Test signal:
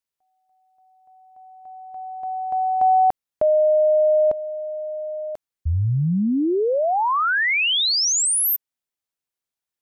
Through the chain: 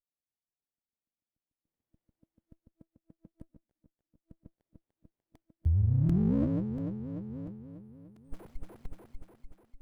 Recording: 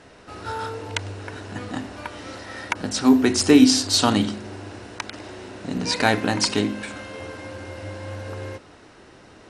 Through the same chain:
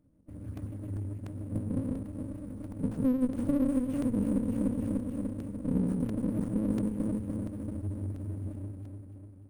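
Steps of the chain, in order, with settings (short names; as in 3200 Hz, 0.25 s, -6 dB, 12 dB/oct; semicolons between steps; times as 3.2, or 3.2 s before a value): gate -44 dBFS, range -12 dB; dynamic EQ 180 Hz, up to +5 dB, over -41 dBFS, Q 4.1; vibrato 7.3 Hz 77 cents; bell 1500 Hz -12 dB 0.42 oct; on a send: echo with dull and thin repeats by turns 0.148 s, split 2500 Hz, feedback 76%, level -3 dB; on the sum: compressor 16:1, threshold -22 dBFS; FFT band-reject 330–8700 Hz; crackling interface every 0.69 s, samples 128, repeat, from 0.57; running maximum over 33 samples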